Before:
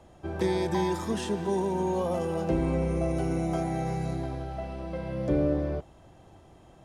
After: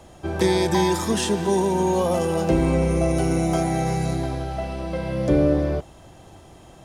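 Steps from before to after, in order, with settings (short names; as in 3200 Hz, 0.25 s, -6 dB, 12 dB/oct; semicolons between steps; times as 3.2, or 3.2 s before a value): high shelf 3100 Hz +8 dB; gain +7 dB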